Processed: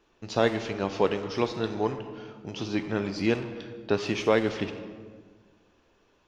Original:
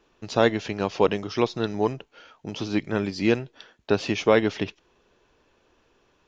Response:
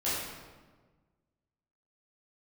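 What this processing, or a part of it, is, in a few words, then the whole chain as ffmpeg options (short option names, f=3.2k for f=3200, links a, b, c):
saturated reverb return: -filter_complex "[0:a]asplit=2[a][b];[1:a]atrim=start_sample=2205[c];[b][c]afir=irnorm=-1:irlink=0,asoftclip=type=tanh:threshold=-17.5dB,volume=-11dB[d];[a][d]amix=inputs=2:normalize=0,volume=-4.5dB"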